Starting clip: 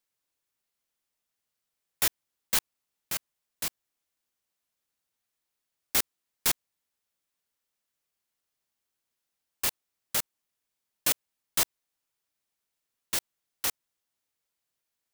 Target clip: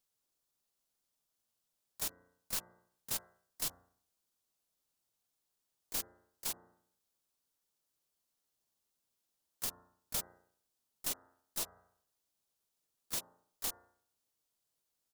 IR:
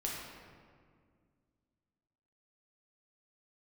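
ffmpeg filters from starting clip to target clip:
-filter_complex "[0:a]equalizer=frequency=2200:width=2:gain=-13,bandreject=frequency=88.66:width_type=h:width=4,bandreject=frequency=177.32:width_type=h:width=4,bandreject=frequency=265.98:width_type=h:width=4,bandreject=frequency=354.64:width_type=h:width=4,bandreject=frequency=443.3:width_type=h:width=4,bandreject=frequency=531.96:width_type=h:width=4,bandreject=frequency=620.62:width_type=h:width=4,bandreject=frequency=709.28:width_type=h:width=4,bandreject=frequency=797.94:width_type=h:width=4,bandreject=frequency=886.6:width_type=h:width=4,bandreject=frequency=975.26:width_type=h:width=4,bandreject=frequency=1063.92:width_type=h:width=4,bandreject=frequency=1152.58:width_type=h:width=4,bandreject=frequency=1241.24:width_type=h:width=4,bandreject=frequency=1329.9:width_type=h:width=4,bandreject=frequency=1418.56:width_type=h:width=4,bandreject=frequency=1507.22:width_type=h:width=4,bandreject=frequency=1595.88:width_type=h:width=4,acompressor=threshold=-31dB:ratio=2,alimiter=limit=-20dB:level=0:latency=1:release=432,aeval=exprs='(tanh(28.2*val(0)+0.1)-tanh(0.1))/28.2':channel_layout=same,asplit=4[link_01][link_02][link_03][link_04];[link_02]asetrate=29433,aresample=44100,atempo=1.49831,volume=-5dB[link_05];[link_03]asetrate=33038,aresample=44100,atempo=1.33484,volume=-17dB[link_06];[link_04]asetrate=55563,aresample=44100,atempo=0.793701,volume=-8dB[link_07];[link_01][link_05][link_06][link_07]amix=inputs=4:normalize=0,volume=-1dB"

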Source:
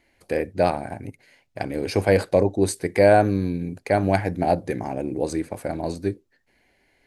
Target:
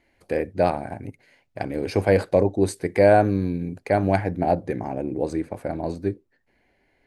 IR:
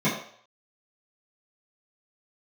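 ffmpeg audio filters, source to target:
-af "asetnsamples=nb_out_samples=441:pad=0,asendcmd='4.24 highshelf g -11.5',highshelf=frequency=3200:gain=-6.5"

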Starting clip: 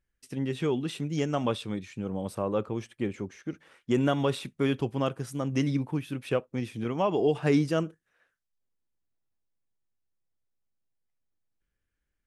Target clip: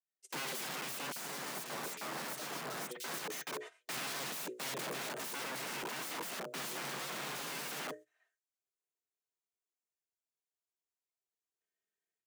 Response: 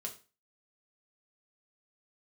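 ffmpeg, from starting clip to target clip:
-filter_complex "[0:a]bandreject=frequency=60:width_type=h:width=6,bandreject=frequency=120:width_type=h:width=6,bandreject=frequency=180:width_type=h:width=6,bandreject=frequency=240:width_type=h:width=6,bandreject=frequency=300:width_type=h:width=6,bandreject=frequency=360:width_type=h:width=6,bandreject=frequency=420:width_type=h:width=6,bandreject=frequency=480:width_type=h:width=6,agate=range=-19dB:threshold=-50dB:ratio=16:detection=peak,highpass=200,equalizer=frequency=7000:width_type=o:width=0.55:gain=8.5,aecho=1:1:3.5:0.68,dynaudnorm=framelen=380:gausssize=3:maxgain=10dB,alimiter=limit=-22dB:level=0:latency=1:release=79,aeval=exprs='(mod(47.3*val(0)+1,2)-1)/47.3':channel_layout=same,afreqshift=130,asoftclip=type=hard:threshold=-31dB,asettb=1/sr,asplit=3[link_01][link_02][link_03];[link_01]atrim=end=1.124[link_04];[link_02]atrim=start=1.12:end=3.24,asetpts=PTS-STARTPTS,afade=type=in:duration=0.004:curve=qsin,afade=type=out:start_time=2.116:duration=0.004:curve=qsin,acrossover=split=2900[link_05][link_06];[link_05]adelay=40[link_07];[link_07][link_06]amix=inputs=2:normalize=0,atrim=end_sample=93492[link_08];[link_03]atrim=start=3.236[link_09];[link_04][link_08]acrossfade=duration=0.004:curve1=hsin:curve2=qsin[link_10];[link_10][link_09]acrossfade=duration=0.004:curve1=qsin:curve2=hsin,adynamicequalizer=threshold=0.00447:dfrequency=2100:dqfactor=0.7:tfrequency=2100:tqfactor=0.7:attack=5:release=100:ratio=0.375:range=2:mode=cutabove:tftype=highshelf,volume=-1dB"

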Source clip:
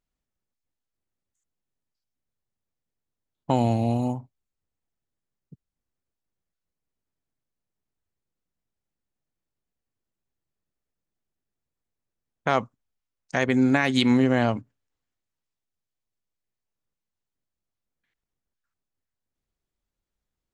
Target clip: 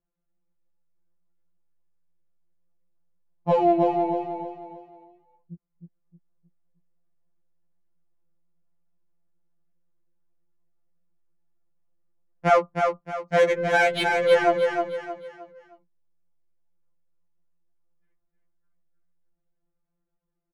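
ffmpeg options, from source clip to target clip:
ffmpeg -i in.wav -filter_complex "[0:a]equalizer=frequency=6200:width=0.68:gain=-11,acrossover=split=330[link_01][link_02];[link_02]adynamicsmooth=sensitivity=2:basefreq=1600[link_03];[link_01][link_03]amix=inputs=2:normalize=0,aecho=1:1:311|622|933|1244:0.562|0.202|0.0729|0.0262,afftfilt=real='re*2.83*eq(mod(b,8),0)':imag='im*2.83*eq(mod(b,8),0)':win_size=2048:overlap=0.75,volume=7dB" out.wav

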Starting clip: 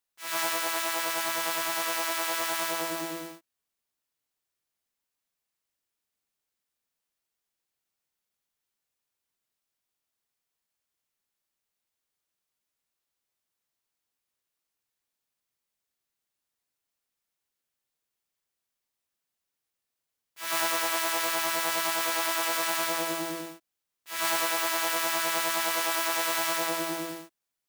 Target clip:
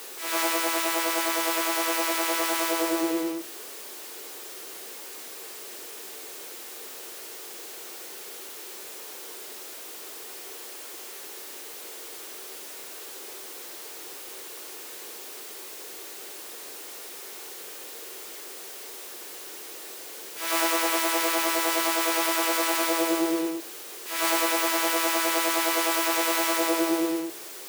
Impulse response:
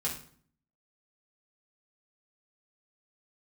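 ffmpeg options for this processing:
-filter_complex "[0:a]aeval=exprs='val(0)+0.5*0.0168*sgn(val(0))':channel_layout=same,highpass=frequency=380:width_type=q:width=4.1,asplit=2[link_01][link_02];[1:a]atrim=start_sample=2205[link_03];[link_02][link_03]afir=irnorm=-1:irlink=0,volume=-13dB[link_04];[link_01][link_04]amix=inputs=2:normalize=0"

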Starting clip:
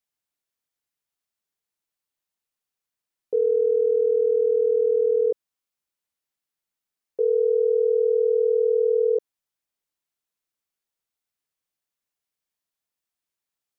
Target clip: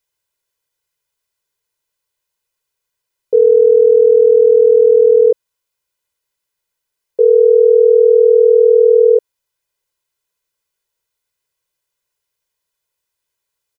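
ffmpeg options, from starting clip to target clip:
ffmpeg -i in.wav -af "aecho=1:1:2:0.73,volume=7.5dB" out.wav

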